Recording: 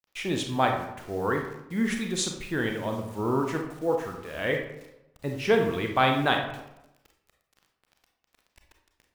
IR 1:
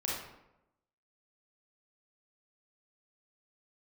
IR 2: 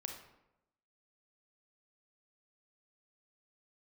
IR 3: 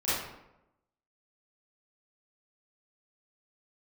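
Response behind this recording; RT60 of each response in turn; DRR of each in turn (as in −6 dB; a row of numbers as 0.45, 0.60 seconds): 2; 0.90, 0.90, 0.90 seconds; −5.5, 3.0, −13.5 decibels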